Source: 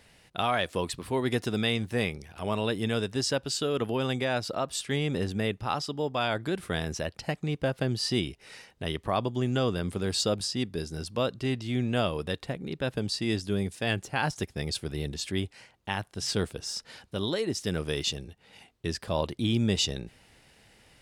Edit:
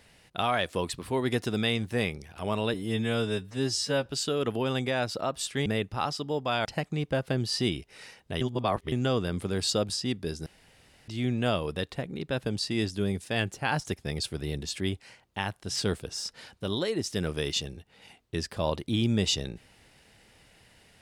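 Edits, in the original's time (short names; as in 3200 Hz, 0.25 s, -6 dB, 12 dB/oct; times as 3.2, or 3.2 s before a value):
2.74–3.4 stretch 2×
5–5.35 cut
6.34–7.16 cut
8.92–9.43 reverse
10.97–11.59 room tone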